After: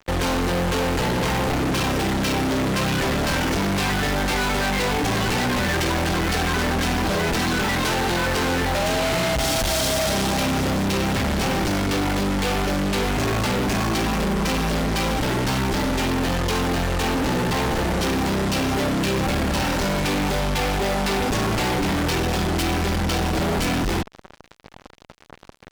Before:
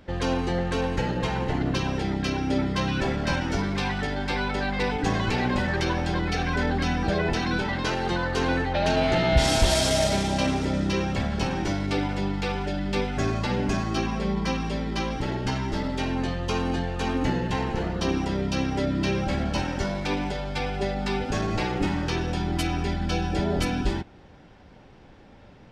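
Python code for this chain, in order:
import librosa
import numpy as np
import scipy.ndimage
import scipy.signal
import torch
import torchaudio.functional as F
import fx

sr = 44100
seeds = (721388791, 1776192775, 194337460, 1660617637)

y = fx.fuzz(x, sr, gain_db=43.0, gate_db=-44.0)
y = F.gain(torch.from_numpy(y), -7.5).numpy()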